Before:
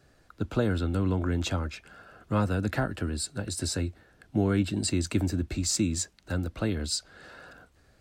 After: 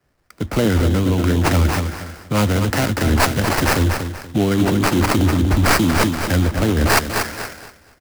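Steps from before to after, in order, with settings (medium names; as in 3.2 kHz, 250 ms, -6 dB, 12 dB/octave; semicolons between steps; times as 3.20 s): tracing distortion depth 0.1 ms; peaking EQ 4.6 kHz +7.5 dB 0.69 oct; in parallel at -1.5 dB: compression, threshold -37 dBFS, peak gain reduction 16 dB; on the sum: sample-rate reducer 3.5 kHz, jitter 20%; on a send: feedback delay 239 ms, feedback 50%, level -9 dB; on the sum: loudness maximiser +21.5 dB; three bands expanded up and down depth 100%; trim -7 dB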